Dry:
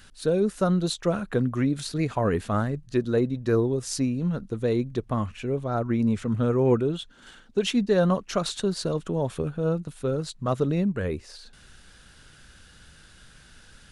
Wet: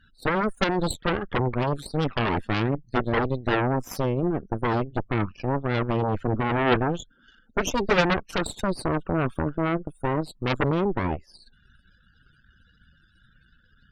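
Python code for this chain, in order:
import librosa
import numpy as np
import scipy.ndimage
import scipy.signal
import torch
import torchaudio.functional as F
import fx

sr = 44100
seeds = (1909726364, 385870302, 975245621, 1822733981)

y = fx.spec_topn(x, sr, count=32)
y = fx.cheby_harmonics(y, sr, harmonics=(3, 6, 8), levels_db=(-16, -10, -6), full_scale_db=-10.0)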